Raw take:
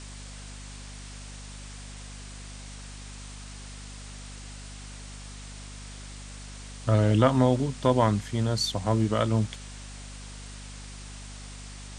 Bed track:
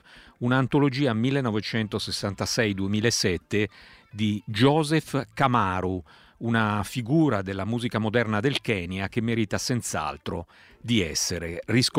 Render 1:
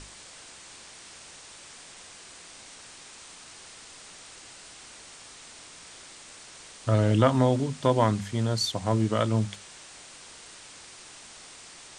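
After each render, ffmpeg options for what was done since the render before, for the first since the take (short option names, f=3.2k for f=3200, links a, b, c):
-af "bandreject=f=50:t=h:w=6,bandreject=f=100:t=h:w=6,bandreject=f=150:t=h:w=6,bandreject=f=200:t=h:w=6,bandreject=f=250:t=h:w=6"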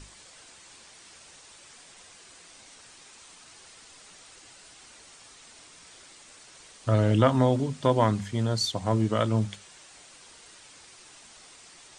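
-af "afftdn=nr=6:nf=-48"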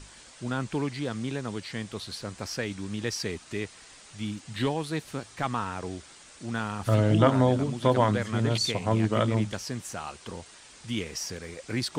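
-filter_complex "[1:a]volume=-8.5dB[a];[0:a][a]amix=inputs=2:normalize=0"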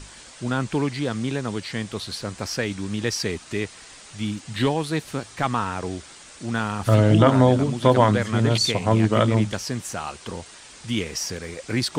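-af "volume=6dB,alimiter=limit=-2dB:level=0:latency=1"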